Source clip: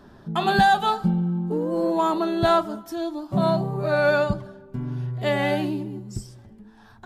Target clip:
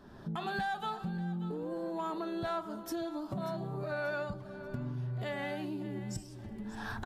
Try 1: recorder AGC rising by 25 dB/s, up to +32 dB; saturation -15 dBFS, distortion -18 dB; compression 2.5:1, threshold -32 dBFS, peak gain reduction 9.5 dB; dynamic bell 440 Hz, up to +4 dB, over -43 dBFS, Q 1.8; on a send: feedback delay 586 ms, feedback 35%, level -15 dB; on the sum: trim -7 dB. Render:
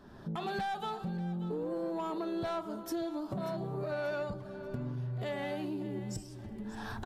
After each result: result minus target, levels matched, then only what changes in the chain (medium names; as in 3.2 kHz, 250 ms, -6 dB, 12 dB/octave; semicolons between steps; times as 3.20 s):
saturation: distortion +9 dB; 2 kHz band -4.0 dB
change: saturation -9 dBFS, distortion -26 dB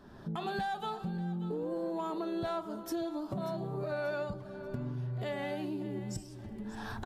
2 kHz band -4.0 dB
change: dynamic bell 1.6 kHz, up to +4 dB, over -43 dBFS, Q 1.8